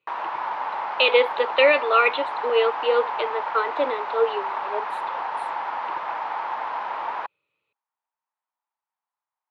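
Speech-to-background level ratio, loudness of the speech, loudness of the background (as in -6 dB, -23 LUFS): 7.5 dB, -21.5 LUFS, -29.0 LUFS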